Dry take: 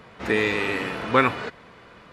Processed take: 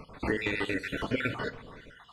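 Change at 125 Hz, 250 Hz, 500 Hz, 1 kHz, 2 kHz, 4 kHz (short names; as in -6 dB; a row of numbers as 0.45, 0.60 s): -4.0, -5.5, -9.0, -14.5, -7.5, -7.0 dB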